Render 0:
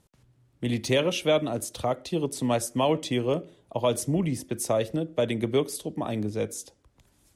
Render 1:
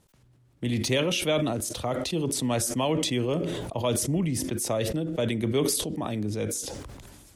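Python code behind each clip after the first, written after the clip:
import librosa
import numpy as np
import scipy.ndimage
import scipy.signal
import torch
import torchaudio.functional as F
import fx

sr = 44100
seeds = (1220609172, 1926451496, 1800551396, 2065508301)

y = fx.dynamic_eq(x, sr, hz=650.0, q=0.72, threshold_db=-37.0, ratio=4.0, max_db=-4)
y = fx.sustainer(y, sr, db_per_s=30.0)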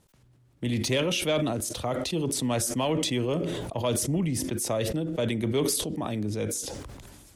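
y = 10.0 ** (-14.5 / 20.0) * np.tanh(x / 10.0 ** (-14.5 / 20.0))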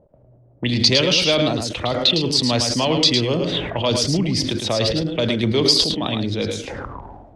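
y = x + 10.0 ** (-6.0 / 20.0) * np.pad(x, (int(107 * sr / 1000.0), 0))[:len(x)]
y = fx.envelope_lowpass(y, sr, base_hz=590.0, top_hz=4700.0, q=6.1, full_db=-24.5, direction='up')
y = F.gain(torch.from_numpy(y), 6.0).numpy()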